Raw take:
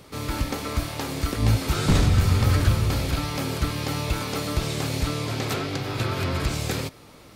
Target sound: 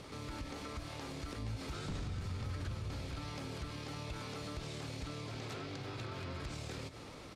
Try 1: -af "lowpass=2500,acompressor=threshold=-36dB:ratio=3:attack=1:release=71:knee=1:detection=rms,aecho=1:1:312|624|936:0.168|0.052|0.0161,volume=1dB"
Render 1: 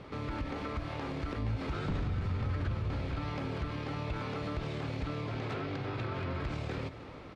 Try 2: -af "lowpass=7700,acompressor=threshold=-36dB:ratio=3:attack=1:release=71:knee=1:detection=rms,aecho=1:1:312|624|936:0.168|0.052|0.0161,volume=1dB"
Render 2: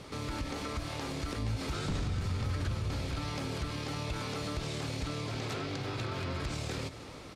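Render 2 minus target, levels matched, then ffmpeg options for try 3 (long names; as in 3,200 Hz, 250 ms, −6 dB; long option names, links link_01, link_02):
downward compressor: peak gain reduction −7 dB
-af "lowpass=7700,acompressor=threshold=-46.5dB:ratio=3:attack=1:release=71:knee=1:detection=rms,aecho=1:1:312|624|936:0.168|0.052|0.0161,volume=1dB"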